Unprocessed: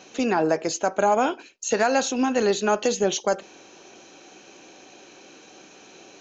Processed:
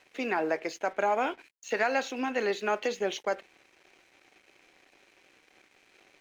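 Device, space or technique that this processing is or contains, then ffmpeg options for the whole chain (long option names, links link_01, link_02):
pocket radio on a weak battery: -af "highpass=270,lowpass=4300,aeval=exprs='sgn(val(0))*max(abs(val(0))-0.00316,0)':channel_layout=same,equalizer=frequency=2100:width_type=o:width=0.59:gain=10,volume=-7dB"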